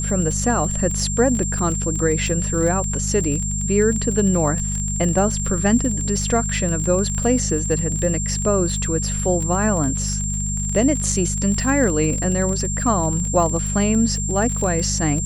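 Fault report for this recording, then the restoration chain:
crackle 28/s -24 dBFS
hum 50 Hz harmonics 4 -25 dBFS
tone 7400 Hz -25 dBFS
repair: de-click; notch 7400 Hz, Q 30; de-hum 50 Hz, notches 4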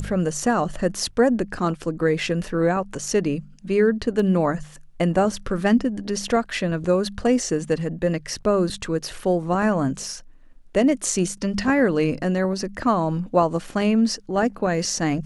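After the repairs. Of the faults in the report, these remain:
none

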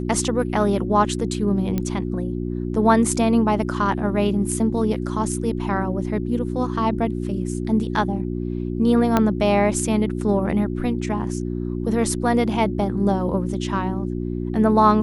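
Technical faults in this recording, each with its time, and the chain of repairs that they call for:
hum 60 Hz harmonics 6 -26 dBFS
1.78 pop -11 dBFS
9.17 pop -5 dBFS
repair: de-click; de-hum 60 Hz, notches 6

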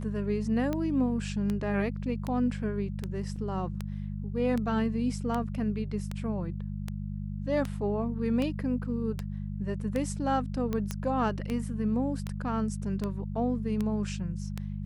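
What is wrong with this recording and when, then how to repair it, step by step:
hum 50 Hz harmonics 4 -35 dBFS
tick 78 rpm -19 dBFS
3.36 gap 3.8 ms
10.91 pop -18 dBFS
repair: de-click; de-hum 50 Hz, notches 4; interpolate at 3.36, 3.8 ms

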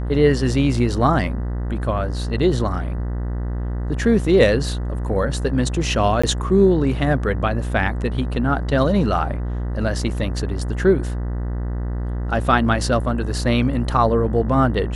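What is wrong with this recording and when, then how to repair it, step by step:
buzz 60 Hz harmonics 33 -24 dBFS
6.22–6.24 gap 15 ms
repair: de-hum 60 Hz, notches 33; interpolate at 6.22, 15 ms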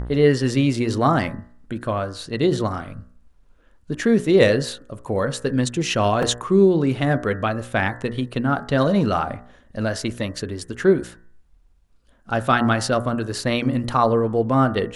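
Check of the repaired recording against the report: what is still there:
none

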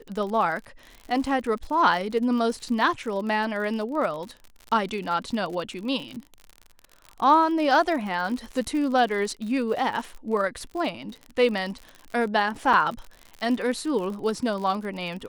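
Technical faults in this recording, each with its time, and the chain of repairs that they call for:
crackle 59/s -32 dBFS
12.73–12.74 gap 5.1 ms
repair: de-click; interpolate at 12.73, 5.1 ms

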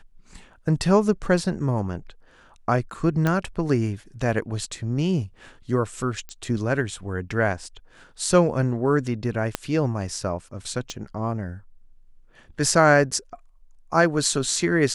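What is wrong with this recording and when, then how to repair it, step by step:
3.27 pop -10 dBFS
6.29 pop -20 dBFS
9.55 pop -8 dBFS
10.9 pop -18 dBFS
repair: de-click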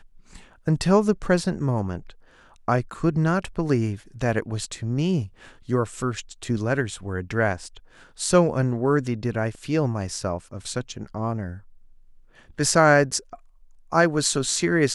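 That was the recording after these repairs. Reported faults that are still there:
9.55 pop
10.9 pop

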